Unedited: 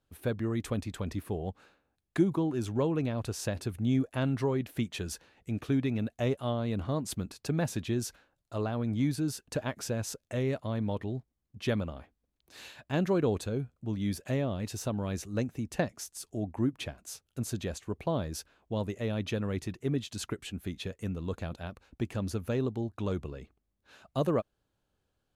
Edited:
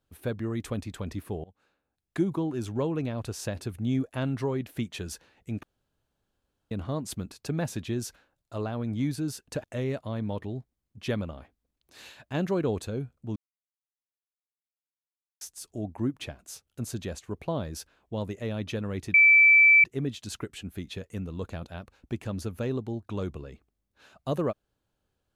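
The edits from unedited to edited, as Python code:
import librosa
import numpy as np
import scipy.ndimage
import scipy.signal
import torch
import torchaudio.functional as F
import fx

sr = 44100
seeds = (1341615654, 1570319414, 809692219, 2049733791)

y = fx.edit(x, sr, fx.fade_in_from(start_s=1.44, length_s=0.86, floor_db=-23.5),
    fx.room_tone_fill(start_s=5.63, length_s=1.08),
    fx.cut(start_s=9.64, length_s=0.59),
    fx.silence(start_s=13.95, length_s=2.05),
    fx.insert_tone(at_s=19.73, length_s=0.7, hz=2320.0, db=-13.5), tone=tone)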